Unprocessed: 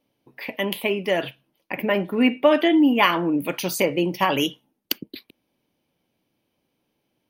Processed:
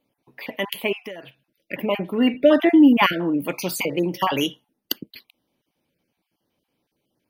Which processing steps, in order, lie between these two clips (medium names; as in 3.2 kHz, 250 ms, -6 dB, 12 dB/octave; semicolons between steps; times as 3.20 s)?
random holes in the spectrogram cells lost 21%; 1.03–1.73 s: compression 12:1, threshold -33 dBFS, peak gain reduction 16.5 dB; 2.34–3.13 s: bass shelf 230 Hz +11.5 dB; 3.77–4.28 s: de-hum 109.3 Hz, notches 8